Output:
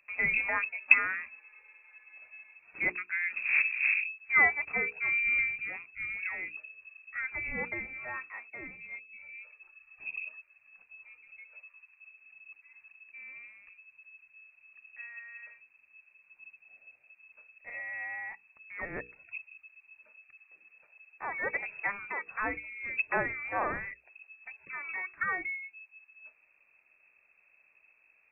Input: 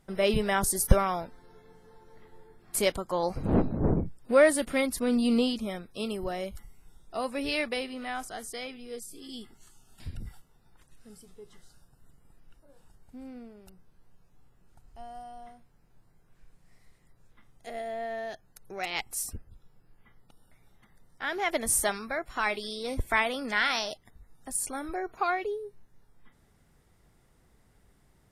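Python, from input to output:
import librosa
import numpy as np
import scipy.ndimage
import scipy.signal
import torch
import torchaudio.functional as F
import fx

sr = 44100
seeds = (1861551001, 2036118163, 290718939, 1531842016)

y = fx.freq_invert(x, sr, carrier_hz=2600)
y = fx.hum_notches(y, sr, base_hz=60, count=8)
y = y * librosa.db_to_amplitude(-4.0)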